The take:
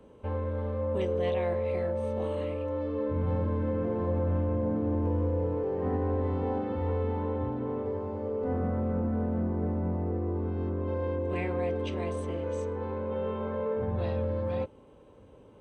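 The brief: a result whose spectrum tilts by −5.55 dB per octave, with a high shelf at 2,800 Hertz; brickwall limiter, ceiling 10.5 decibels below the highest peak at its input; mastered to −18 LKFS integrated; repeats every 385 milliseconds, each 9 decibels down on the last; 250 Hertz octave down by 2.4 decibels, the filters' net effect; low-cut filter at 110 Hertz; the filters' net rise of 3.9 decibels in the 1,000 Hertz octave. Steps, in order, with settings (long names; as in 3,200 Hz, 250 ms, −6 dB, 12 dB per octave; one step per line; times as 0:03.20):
high-pass filter 110 Hz
parametric band 250 Hz −3 dB
parametric band 1,000 Hz +5.5 dB
high-shelf EQ 2,800 Hz −4.5 dB
brickwall limiter −29 dBFS
repeating echo 385 ms, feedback 35%, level −9 dB
level +18.5 dB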